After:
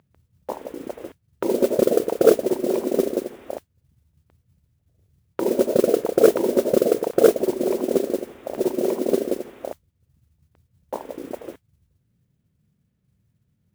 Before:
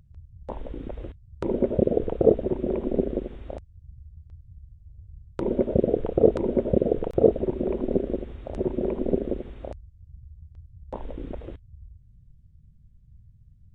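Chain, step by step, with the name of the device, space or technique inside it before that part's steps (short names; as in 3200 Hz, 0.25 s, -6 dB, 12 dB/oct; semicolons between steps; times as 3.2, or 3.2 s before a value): carbon microphone (BPF 320–2900 Hz; soft clip -10 dBFS, distortion -17 dB; modulation noise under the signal 19 dB); gain +7 dB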